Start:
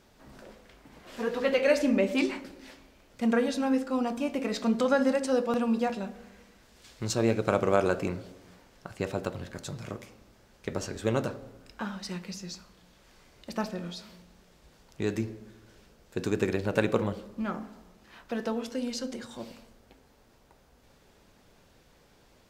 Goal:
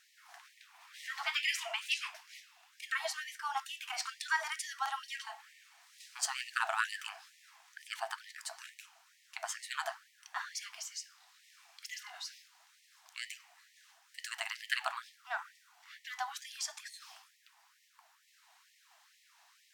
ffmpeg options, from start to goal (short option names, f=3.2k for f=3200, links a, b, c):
-af "asetrate=50274,aresample=44100,afftfilt=real='re*gte(b*sr/1024,640*pow(1800/640,0.5+0.5*sin(2*PI*2.2*pts/sr)))':imag='im*gte(b*sr/1024,640*pow(1800/640,0.5+0.5*sin(2*PI*2.2*pts/sr)))':win_size=1024:overlap=0.75"